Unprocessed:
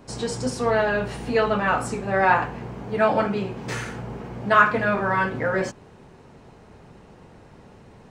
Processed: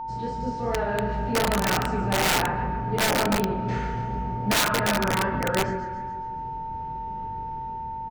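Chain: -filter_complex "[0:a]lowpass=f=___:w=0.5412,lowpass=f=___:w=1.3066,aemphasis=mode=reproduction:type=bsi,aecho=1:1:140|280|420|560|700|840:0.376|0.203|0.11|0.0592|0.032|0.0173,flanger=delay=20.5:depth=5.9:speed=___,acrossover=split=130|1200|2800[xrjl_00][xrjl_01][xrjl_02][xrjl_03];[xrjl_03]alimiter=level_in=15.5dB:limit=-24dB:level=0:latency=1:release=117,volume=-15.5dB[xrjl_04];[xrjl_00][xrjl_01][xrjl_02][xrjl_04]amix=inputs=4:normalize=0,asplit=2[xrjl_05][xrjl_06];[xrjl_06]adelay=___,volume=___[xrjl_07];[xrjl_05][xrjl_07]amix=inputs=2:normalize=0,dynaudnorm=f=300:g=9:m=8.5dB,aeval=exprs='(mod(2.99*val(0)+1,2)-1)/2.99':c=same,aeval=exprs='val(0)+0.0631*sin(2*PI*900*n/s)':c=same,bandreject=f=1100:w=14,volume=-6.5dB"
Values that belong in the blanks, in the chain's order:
7200, 7200, 2.6, 39, -9.5dB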